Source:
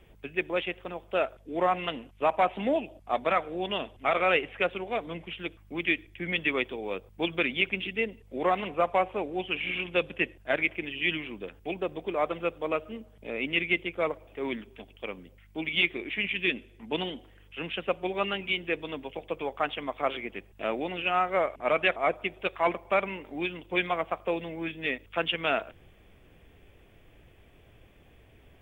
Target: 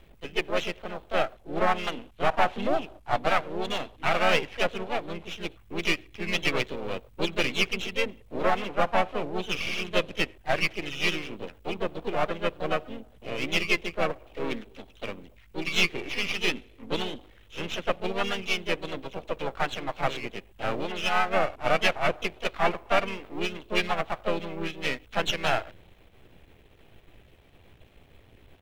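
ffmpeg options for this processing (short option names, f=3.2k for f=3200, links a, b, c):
-filter_complex "[0:a]aeval=exprs='if(lt(val(0),0),0.251*val(0),val(0))':c=same,asplit=3[a][b][c];[b]asetrate=22050,aresample=44100,atempo=2,volume=-16dB[d];[c]asetrate=52444,aresample=44100,atempo=0.840896,volume=-4dB[e];[a][d][e]amix=inputs=3:normalize=0,volume=3dB"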